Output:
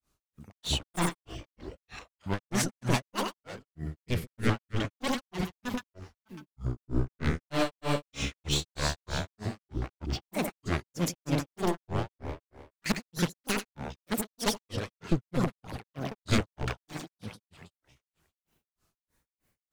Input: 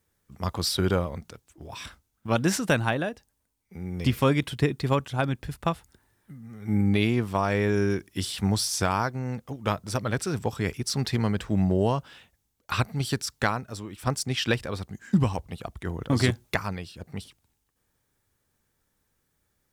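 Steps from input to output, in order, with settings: one-sided wavefolder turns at -22.5 dBFS; two-band feedback delay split 600 Hz, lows 130 ms, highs 180 ms, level -3 dB; granulator 214 ms, grains 3.2 per s, pitch spread up and down by 12 st

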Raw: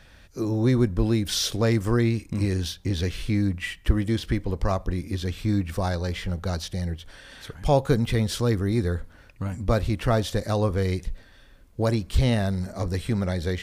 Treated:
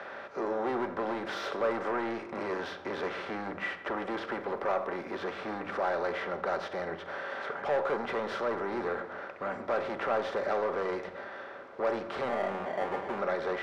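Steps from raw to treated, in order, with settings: spectral levelling over time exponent 0.6; peaking EQ 1.4 kHz +5 dB 0.37 oct; 12.28–13.19 s: sample-rate reducer 1.3 kHz, jitter 0%; band-pass 170–5200 Hz; 4.30–5.66 s: word length cut 10-bit, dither none; saturation -21.5 dBFS, distortion -8 dB; three-band isolator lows -21 dB, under 410 Hz, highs -21 dB, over 2.1 kHz; simulated room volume 3600 m³, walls furnished, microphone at 1.2 m

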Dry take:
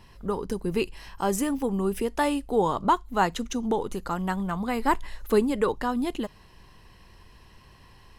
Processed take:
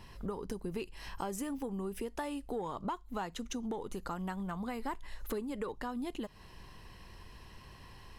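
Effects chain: saturation -12 dBFS, distortion -23 dB; compression 6:1, threshold -36 dBFS, peak gain reduction 17 dB

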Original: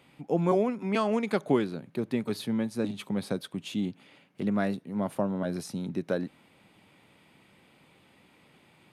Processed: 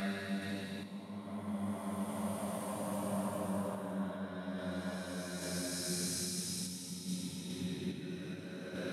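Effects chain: Paulstretch 6.7×, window 0.50 s, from 4.72 s; random-step tremolo 2.4 Hz; amplifier tone stack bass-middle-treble 5-5-5; trim +12.5 dB

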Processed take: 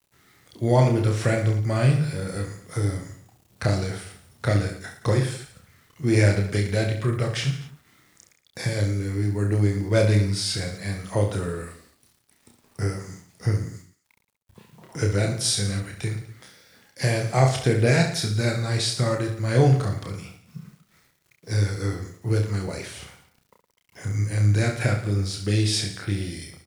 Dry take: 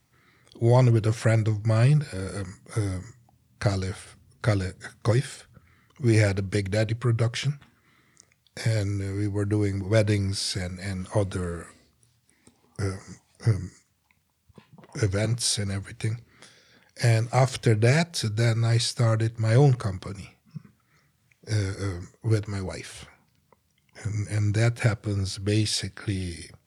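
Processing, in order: bit crusher 10-bit; reverse bouncing-ball echo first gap 30 ms, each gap 1.25×, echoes 5

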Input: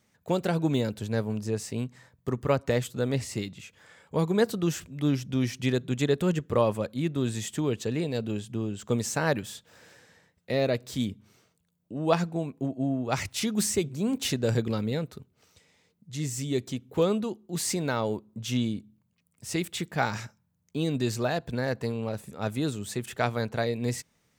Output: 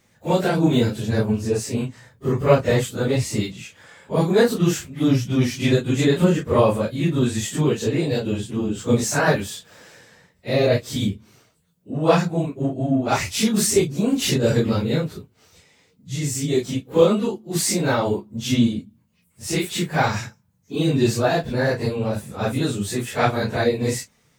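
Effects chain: phase randomisation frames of 100 ms; trim +8 dB

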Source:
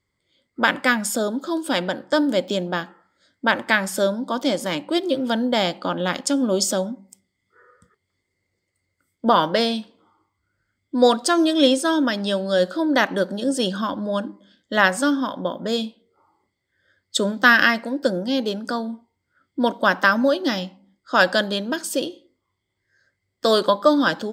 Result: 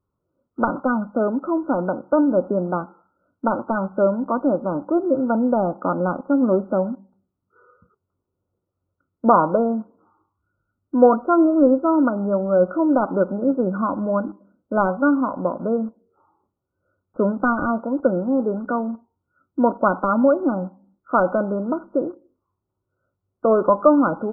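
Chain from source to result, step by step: de-esser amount 65%; in parallel at -8.5 dB: bit crusher 6-bit; on the sum: brick-wall FIR low-pass 1.5 kHz

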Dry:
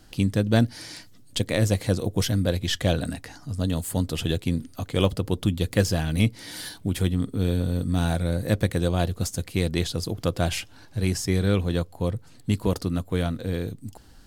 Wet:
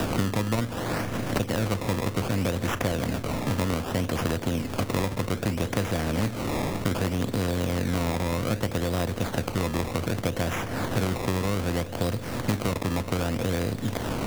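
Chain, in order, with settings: spectral levelling over time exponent 0.4; decimation with a swept rate 20×, swing 100% 0.64 Hz; three bands compressed up and down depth 100%; trim -8.5 dB

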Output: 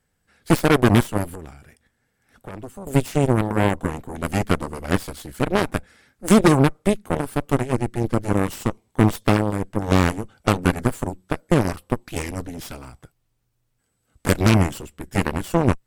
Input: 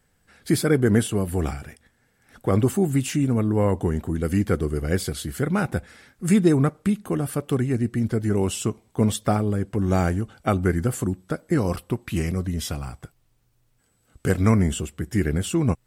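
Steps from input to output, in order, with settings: 1.35–2.87 s: compression 2:1, threshold -36 dBFS, peak gain reduction 11.5 dB; Chebyshev shaper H 5 -10 dB, 6 -12 dB, 7 -7 dB, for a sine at -6.5 dBFS

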